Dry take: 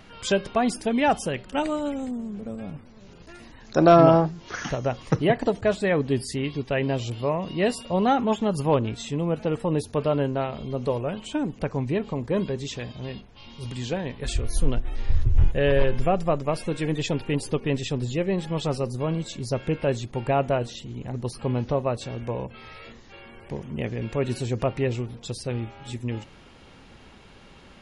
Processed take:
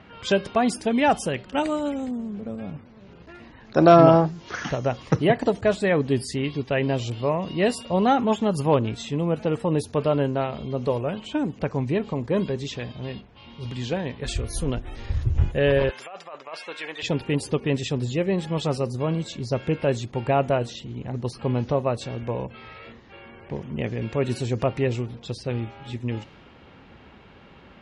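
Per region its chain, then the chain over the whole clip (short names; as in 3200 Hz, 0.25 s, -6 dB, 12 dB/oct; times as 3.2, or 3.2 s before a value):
15.89–17.03 HPF 990 Hz + negative-ratio compressor -36 dBFS
whole clip: low-pass opened by the level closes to 2600 Hz, open at -20.5 dBFS; HPF 52 Hz; gain +1.5 dB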